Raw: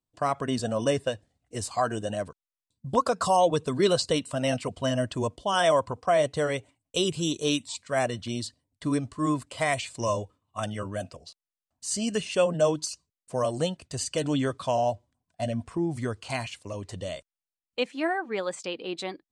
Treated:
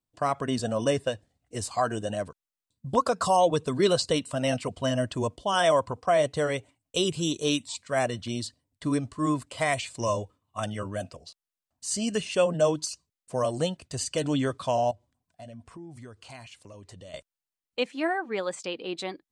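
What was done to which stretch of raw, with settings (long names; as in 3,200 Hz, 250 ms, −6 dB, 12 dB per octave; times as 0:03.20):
0:14.91–0:17.14: downward compressor 2.5 to 1, threshold −48 dBFS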